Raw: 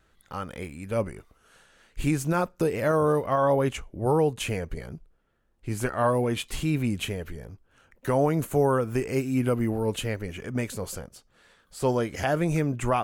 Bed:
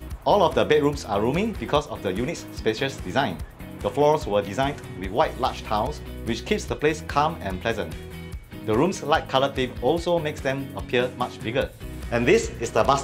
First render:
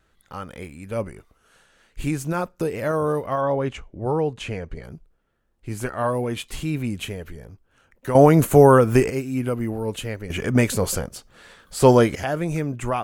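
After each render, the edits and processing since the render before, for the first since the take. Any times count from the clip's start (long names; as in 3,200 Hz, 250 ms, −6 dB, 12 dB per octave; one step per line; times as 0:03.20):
0:03.41–0:04.84: high-frequency loss of the air 79 metres
0:08.15–0:09.10: clip gain +10.5 dB
0:10.30–0:12.15: clip gain +11 dB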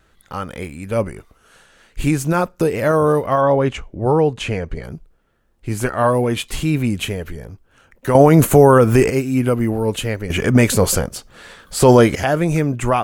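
boost into a limiter +7.5 dB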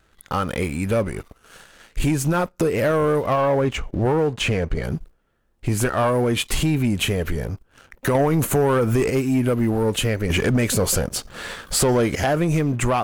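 downward compressor 3 to 1, threshold −25 dBFS, peak gain reduction 14.5 dB
leveller curve on the samples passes 2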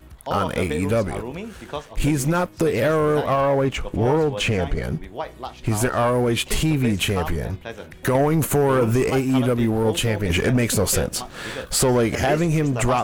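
mix in bed −9 dB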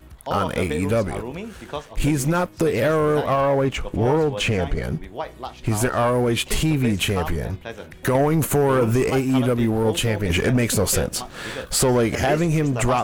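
no processing that can be heard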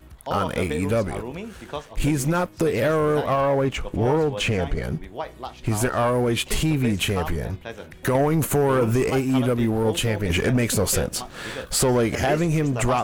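level −1.5 dB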